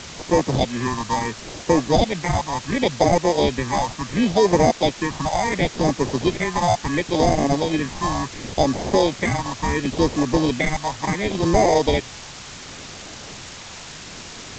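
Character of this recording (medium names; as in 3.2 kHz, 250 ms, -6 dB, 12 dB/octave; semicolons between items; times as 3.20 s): aliases and images of a low sample rate 1.4 kHz, jitter 0%; phasing stages 4, 0.71 Hz, lowest notch 400–3200 Hz; a quantiser's noise floor 6-bit, dither triangular; G.722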